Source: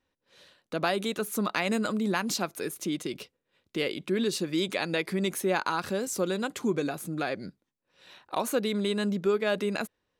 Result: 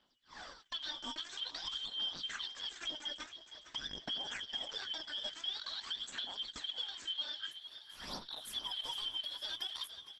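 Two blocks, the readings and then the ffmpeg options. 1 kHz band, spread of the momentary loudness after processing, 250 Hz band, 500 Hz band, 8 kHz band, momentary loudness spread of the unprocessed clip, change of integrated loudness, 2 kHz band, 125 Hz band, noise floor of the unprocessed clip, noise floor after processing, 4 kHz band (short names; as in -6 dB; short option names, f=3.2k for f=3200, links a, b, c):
-17.0 dB, 8 LU, -28.5 dB, -28.0 dB, -14.0 dB, 7 LU, -10.0 dB, -14.0 dB, -26.5 dB, -83 dBFS, -60 dBFS, +1.5 dB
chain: -filter_complex "[0:a]afftfilt=real='real(if(lt(b,272),68*(eq(floor(b/68),0)*2+eq(floor(b/68),1)*3+eq(floor(b/68),2)*0+eq(floor(b/68),3)*1)+mod(b,68),b),0)':imag='imag(if(lt(b,272),68*(eq(floor(b/68),0)*2+eq(floor(b/68),1)*3+eq(floor(b/68),2)*0+eq(floor(b/68),3)*1)+mod(b,68),b),0)':win_size=2048:overlap=0.75,acompressor=threshold=-41dB:ratio=10,aexciter=amount=3.8:drive=9.1:freq=9.2k,asoftclip=type=tanh:threshold=-37dB,dynaudnorm=f=140:g=9:m=4dB,asplit=2[a][b];[b]adelay=20,volume=-13.5dB[c];[a][c]amix=inputs=2:normalize=0,aphaser=in_gain=1:out_gain=1:delay=3.4:decay=0.7:speed=0.48:type=sinusoidal,equalizer=f=100:t=o:w=0.67:g=-10,equalizer=f=250:t=o:w=0.67:g=8,equalizer=f=1.6k:t=o:w=0.67:g=11,equalizer=f=10k:t=o:w=0.67:g=-9,alimiter=level_in=8dB:limit=-24dB:level=0:latency=1:release=190,volume=-8dB,equalizer=f=110:w=2.9:g=-6.5,asplit=2[d][e];[e]asplit=6[f][g][h][i][j][k];[f]adelay=460,afreqshift=39,volume=-12.5dB[l];[g]adelay=920,afreqshift=78,volume=-17.7dB[m];[h]adelay=1380,afreqshift=117,volume=-22.9dB[n];[i]adelay=1840,afreqshift=156,volume=-28.1dB[o];[j]adelay=2300,afreqshift=195,volume=-33.3dB[p];[k]adelay=2760,afreqshift=234,volume=-38.5dB[q];[l][m][n][o][p][q]amix=inputs=6:normalize=0[r];[d][r]amix=inputs=2:normalize=0,volume=2dB" -ar 48000 -c:a libopus -b:a 12k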